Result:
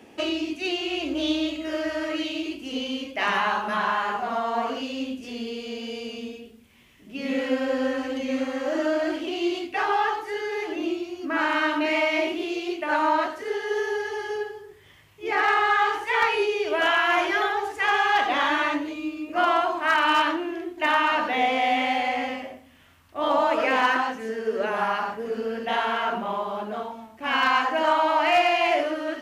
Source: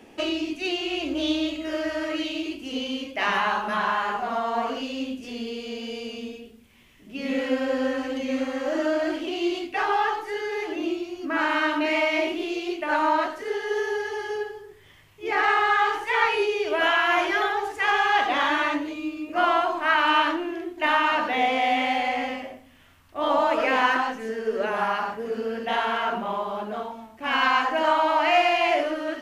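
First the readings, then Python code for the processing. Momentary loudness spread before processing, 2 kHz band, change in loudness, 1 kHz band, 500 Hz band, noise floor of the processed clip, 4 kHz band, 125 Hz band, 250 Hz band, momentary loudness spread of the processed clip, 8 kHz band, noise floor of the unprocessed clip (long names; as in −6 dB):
12 LU, 0.0 dB, 0.0 dB, 0.0 dB, 0.0 dB, −51 dBFS, 0.0 dB, can't be measured, 0.0 dB, 11 LU, +0.5 dB, −51 dBFS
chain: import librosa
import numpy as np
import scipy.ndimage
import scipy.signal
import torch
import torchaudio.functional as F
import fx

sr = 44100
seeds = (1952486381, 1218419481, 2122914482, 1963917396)

y = np.clip(10.0 ** (12.0 / 20.0) * x, -1.0, 1.0) / 10.0 ** (12.0 / 20.0)
y = scipy.signal.sosfilt(scipy.signal.butter(2, 47.0, 'highpass', fs=sr, output='sos'), y)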